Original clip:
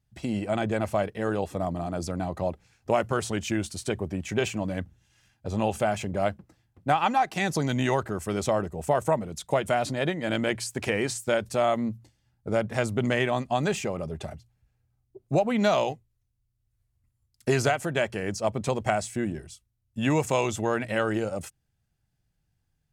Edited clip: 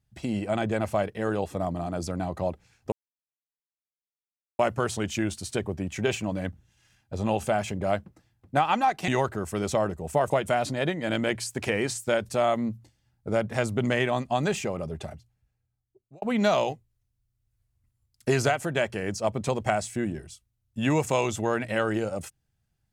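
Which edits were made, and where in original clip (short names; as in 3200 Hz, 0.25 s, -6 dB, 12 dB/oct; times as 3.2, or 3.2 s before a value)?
2.92 insert silence 1.67 s
7.41–7.82 cut
9.04–9.5 cut
14.14–15.42 fade out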